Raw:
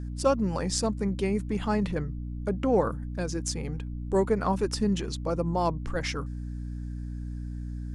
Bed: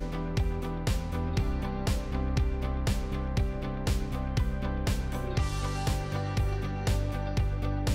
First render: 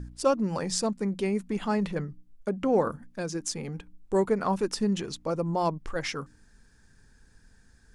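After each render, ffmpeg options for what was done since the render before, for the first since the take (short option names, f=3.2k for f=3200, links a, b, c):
-af "bandreject=f=60:t=h:w=4,bandreject=f=120:t=h:w=4,bandreject=f=180:t=h:w=4,bandreject=f=240:t=h:w=4,bandreject=f=300:t=h:w=4"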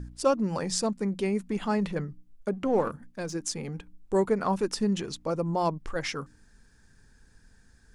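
-filter_complex "[0:a]asettb=1/sr,asplit=3[a][b][c];[a]atrim=end=2.534[d];[b]atrim=start=2.53:end=3.34,asetpts=PTS-STARTPTS,afade=t=in:d=0.004:c=qsin,afade=t=out:st=0.806:d=0.004:c=qsin,aeval=exprs='if(lt(val(0),0),0.708*val(0),val(0))':c=same[e];[c]atrim=start=3.336[f];[d][e]acrossfade=d=0.004:c1=hsin:c2=qsin[g];[g][f]acrossfade=d=0.004:c1=qsin:c2=hsin"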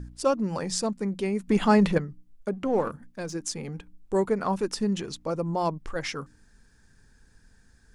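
-filter_complex "[0:a]asplit=3[a][b][c];[a]atrim=end=1.482[d];[b]atrim=start=1.478:end=1.982,asetpts=PTS-STARTPTS,volume=8dB[e];[c]atrim=start=1.978[f];[d][e]acrossfade=d=0.004:c1=hsin:c2=hsin[g];[g][f]acrossfade=d=0.004:c1=hsin:c2=hsin"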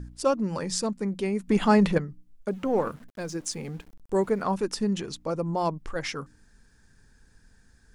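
-filter_complex "[0:a]asettb=1/sr,asplit=3[a][b][c];[a]atrim=end=0.484[d];[b]atrim=start=0.48:end=0.93,asetpts=PTS-STARTPTS,afade=t=in:d=0.004:c=qsin,afade=t=out:st=0.446:d=0.004:c=qsin,bandreject=f=740:w=5.1[e];[c]atrim=start=0.926[f];[d][e]acrossfade=d=0.004:c1=hsin:c2=qsin[g];[g][f]acrossfade=d=0.004:c1=qsin:c2=hsin,asettb=1/sr,asplit=3[h][i][j];[h]atrim=end=2.484[k];[i]atrim=start=2.48:end=4.42,asetpts=PTS-STARTPTS,afade=t=in:d=0.004:c=qsin,afade=t=out:st=1.936:d=0.004:c=qsin,aeval=exprs='val(0)*gte(abs(val(0)),0.00299)':c=same[l];[j]atrim=start=4.416[m];[k][l]acrossfade=d=0.004:c1=hsin:c2=qsin[n];[n][m]acrossfade=d=0.004:c1=qsin:c2=hsin"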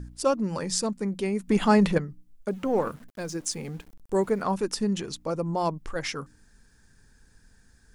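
-af "highshelf=f=7.3k:g=5"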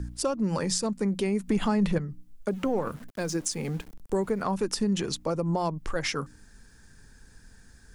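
-filter_complex "[0:a]acrossover=split=150[a][b];[b]acompressor=threshold=-28dB:ratio=6[c];[a][c]amix=inputs=2:normalize=0,asplit=2[d][e];[e]alimiter=level_in=1dB:limit=-24dB:level=0:latency=1:release=241,volume=-1dB,volume=-2dB[f];[d][f]amix=inputs=2:normalize=0"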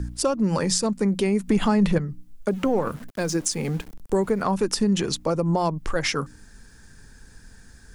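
-af "volume=5dB"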